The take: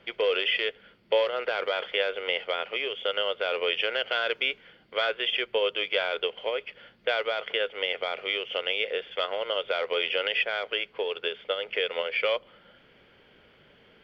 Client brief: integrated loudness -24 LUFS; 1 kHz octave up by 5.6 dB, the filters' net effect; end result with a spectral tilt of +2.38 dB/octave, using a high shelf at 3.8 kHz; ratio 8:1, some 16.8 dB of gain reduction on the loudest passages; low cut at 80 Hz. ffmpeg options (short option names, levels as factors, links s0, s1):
-af "highpass=80,equalizer=f=1000:t=o:g=8.5,highshelf=f=3800:g=-3.5,acompressor=threshold=0.0178:ratio=8,volume=5.62"